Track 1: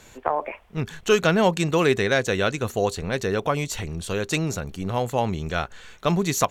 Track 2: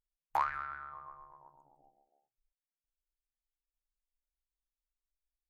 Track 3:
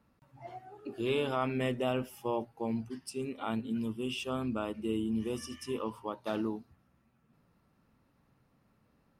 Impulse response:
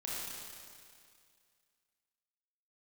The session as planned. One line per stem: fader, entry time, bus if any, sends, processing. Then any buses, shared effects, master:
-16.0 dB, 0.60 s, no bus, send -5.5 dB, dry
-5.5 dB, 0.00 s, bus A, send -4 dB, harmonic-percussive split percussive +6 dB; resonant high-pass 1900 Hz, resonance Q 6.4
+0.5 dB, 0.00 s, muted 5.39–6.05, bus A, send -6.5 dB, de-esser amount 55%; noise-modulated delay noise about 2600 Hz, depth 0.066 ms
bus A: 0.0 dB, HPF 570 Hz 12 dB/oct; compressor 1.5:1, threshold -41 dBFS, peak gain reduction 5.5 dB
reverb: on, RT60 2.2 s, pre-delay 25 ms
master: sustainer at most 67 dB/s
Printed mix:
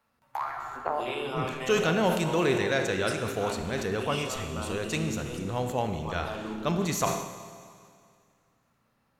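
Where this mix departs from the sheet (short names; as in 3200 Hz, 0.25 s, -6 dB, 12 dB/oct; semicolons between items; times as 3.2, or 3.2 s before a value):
stem 1 -16.0 dB -> -9.0 dB; stem 2: missing resonant high-pass 1900 Hz, resonance Q 6.4; stem 3: missing noise-modulated delay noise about 2600 Hz, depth 0.066 ms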